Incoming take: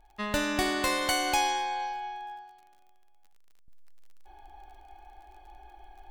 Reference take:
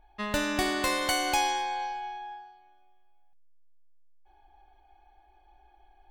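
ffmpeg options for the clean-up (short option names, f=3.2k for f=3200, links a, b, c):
-af "adeclick=t=4,asetnsamples=n=441:p=0,asendcmd='3.68 volume volume -9dB',volume=0dB"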